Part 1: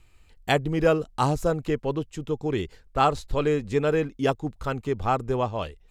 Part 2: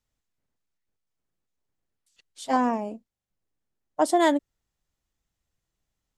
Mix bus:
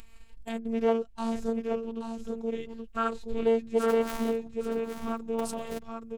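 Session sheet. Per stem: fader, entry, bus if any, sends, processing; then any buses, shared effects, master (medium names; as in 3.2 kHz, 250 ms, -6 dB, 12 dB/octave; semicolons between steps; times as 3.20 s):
+0.5 dB, 0.00 s, no send, echo send -7 dB, gate -51 dBFS, range -13 dB; harmonic-percussive split percussive -18 dB
-10.0 dB, 1.40 s, no send, echo send -9 dB, cycle switcher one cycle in 3, inverted; treble shelf 8 kHz +8.5 dB; compressor with a negative ratio -24 dBFS, ratio -0.5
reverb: none
echo: delay 825 ms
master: upward compressor, threshold -29 dBFS; robot voice 227 Hz; loudspeaker Doppler distortion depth 0.2 ms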